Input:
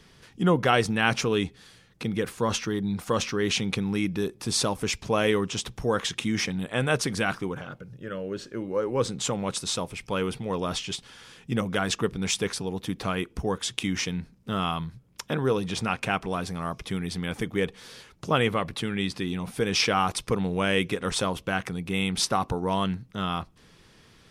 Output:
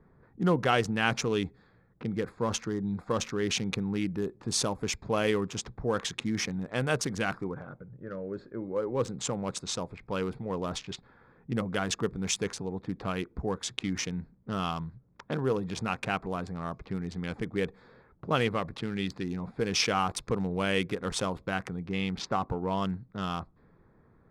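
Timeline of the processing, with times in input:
21.89–22.85 LPF 3700 Hz
whole clip: Wiener smoothing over 15 samples; low-pass opened by the level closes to 1500 Hz, open at -25 dBFS; dynamic EQ 6300 Hz, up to +4 dB, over -46 dBFS, Q 3.6; gain -3.5 dB

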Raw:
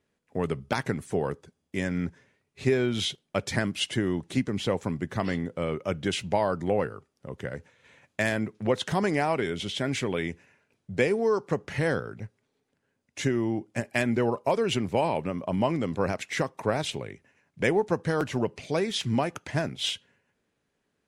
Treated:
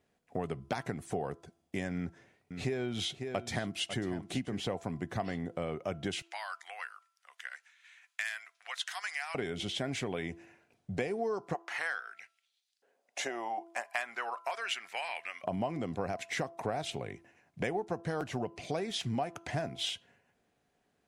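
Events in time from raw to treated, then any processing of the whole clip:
1.96–4.6 echo 0.546 s -14 dB
6.22–9.35 HPF 1400 Hz 24 dB/oct
11.53–15.43 LFO high-pass saw up 0.8 Hz -> 0.13 Hz 440–4600 Hz
whole clip: bell 720 Hz +12 dB 0.21 oct; de-hum 336.8 Hz, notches 4; compressor 3:1, threshold -34 dBFS

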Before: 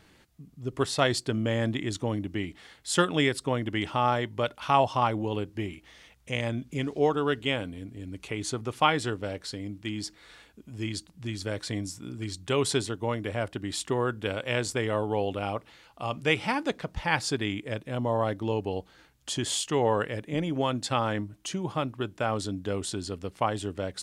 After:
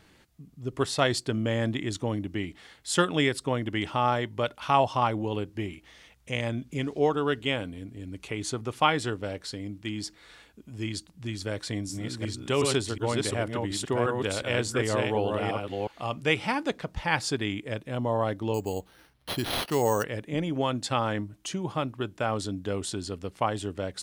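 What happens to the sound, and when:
11.53–16.14 reverse delay 0.362 s, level -3 dB
18.54–20.04 careless resampling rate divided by 6×, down none, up hold

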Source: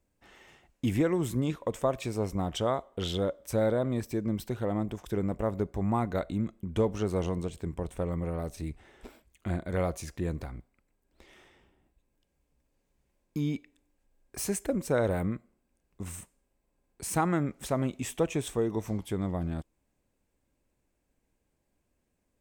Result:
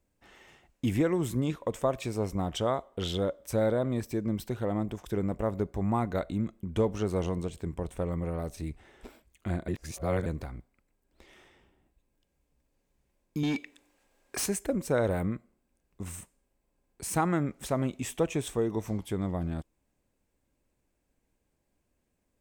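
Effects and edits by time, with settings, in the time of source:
9.68–10.26 reverse
13.43–14.46 overdrive pedal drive 20 dB, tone 6300 Hz, clips at -21 dBFS

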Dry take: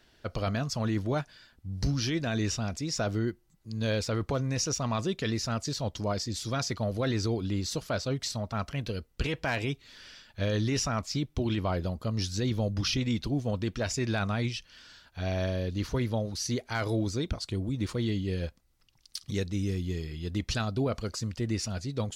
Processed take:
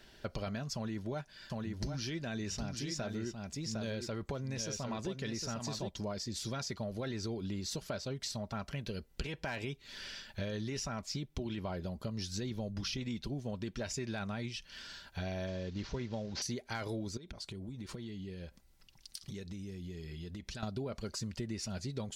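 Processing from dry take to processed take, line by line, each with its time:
0.74–5.91 echo 0.757 s -6.5 dB
15.47–16.42 CVSD 32 kbps
17.17–20.63 compressor 16:1, threshold -43 dBFS
whole clip: notch 1200 Hz, Q 12; comb 5.1 ms, depth 31%; compressor 6:1, threshold -40 dBFS; gain +3.5 dB

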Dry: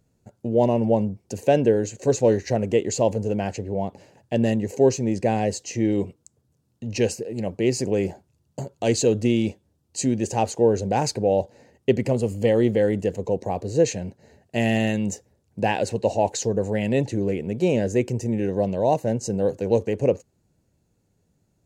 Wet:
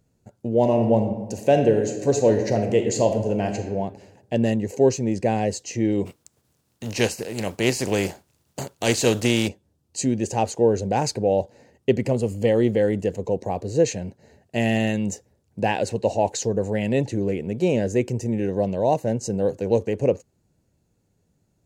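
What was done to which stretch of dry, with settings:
0.6–3.71 reverb throw, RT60 1.1 s, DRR 5 dB
6.05–9.47 spectral contrast lowered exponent 0.61

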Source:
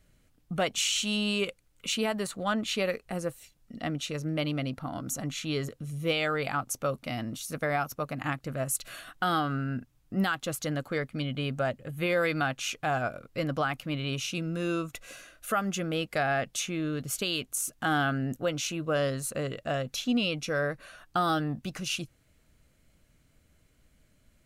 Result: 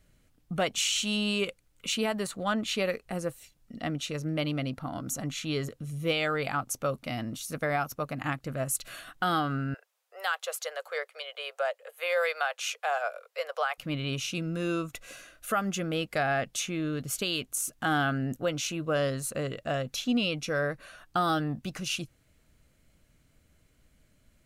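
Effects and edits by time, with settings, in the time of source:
9.74–13.78 steep high-pass 460 Hz 72 dB/oct

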